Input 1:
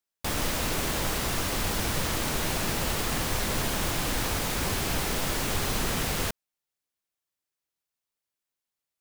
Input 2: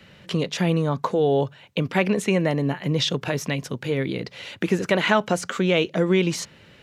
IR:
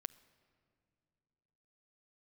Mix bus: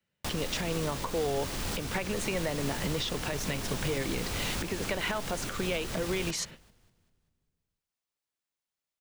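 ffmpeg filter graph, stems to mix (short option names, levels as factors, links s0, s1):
-filter_complex "[0:a]equalizer=f=15000:w=0.73:g=-7.5,acrossover=split=410|3000[s0][s1][s2];[s1]acompressor=threshold=0.0141:ratio=2.5[s3];[s0][s3][s2]amix=inputs=3:normalize=0,aeval=exprs='0.0596*(abs(mod(val(0)/0.0596+3,4)-2)-1)':c=same,volume=0.596,asplit=3[s4][s5][s6];[s5]volume=0.596[s7];[s6]volume=0.1[s8];[1:a]acrossover=split=430[s9][s10];[s9]acompressor=threshold=0.0398:ratio=6[s11];[s11][s10]amix=inputs=2:normalize=0,agate=range=0.0178:threshold=0.00708:ratio=16:detection=peak,acompressor=threshold=0.0251:ratio=1.5,volume=1.19[s12];[2:a]atrim=start_sample=2205[s13];[s7][s13]afir=irnorm=-1:irlink=0[s14];[s8]aecho=0:1:197|394|591|788|985|1182:1|0.45|0.202|0.0911|0.041|0.0185[s15];[s4][s12][s14][s15]amix=inputs=4:normalize=0,alimiter=limit=0.0891:level=0:latency=1:release=323"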